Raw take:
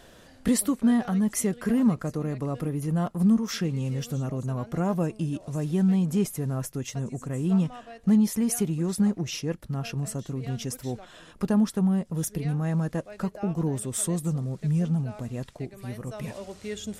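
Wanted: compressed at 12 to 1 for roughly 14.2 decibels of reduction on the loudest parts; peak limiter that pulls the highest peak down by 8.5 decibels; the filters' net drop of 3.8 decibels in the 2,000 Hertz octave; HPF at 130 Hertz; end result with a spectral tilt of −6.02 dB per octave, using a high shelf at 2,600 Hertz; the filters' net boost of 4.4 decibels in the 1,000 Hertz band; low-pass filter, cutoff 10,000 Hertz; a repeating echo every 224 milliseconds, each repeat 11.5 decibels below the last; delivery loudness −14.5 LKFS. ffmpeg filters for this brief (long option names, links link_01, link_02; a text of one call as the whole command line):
ffmpeg -i in.wav -af "highpass=130,lowpass=10000,equalizer=frequency=1000:width_type=o:gain=8,equalizer=frequency=2000:width_type=o:gain=-5.5,highshelf=frequency=2600:gain=-5.5,acompressor=threshold=-32dB:ratio=12,alimiter=level_in=5.5dB:limit=-24dB:level=0:latency=1,volume=-5.5dB,aecho=1:1:224|448|672:0.266|0.0718|0.0194,volume=24dB" out.wav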